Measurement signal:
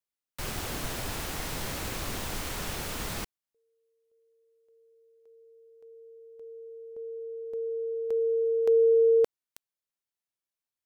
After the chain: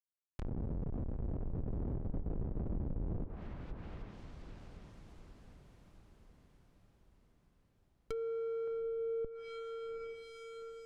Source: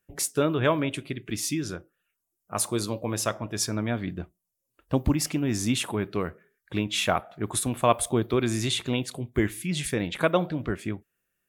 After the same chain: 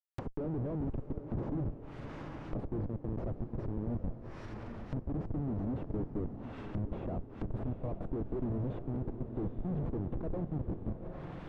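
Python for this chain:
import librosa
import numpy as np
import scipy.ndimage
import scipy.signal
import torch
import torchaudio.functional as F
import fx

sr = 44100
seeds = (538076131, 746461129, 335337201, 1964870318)

y = fx.schmitt(x, sr, flips_db=-28.0)
y = fx.echo_diffused(y, sr, ms=792, feedback_pct=53, wet_db=-9)
y = fx.env_lowpass_down(y, sr, base_hz=520.0, full_db=-30.0)
y = y * librosa.db_to_amplitude(-5.0)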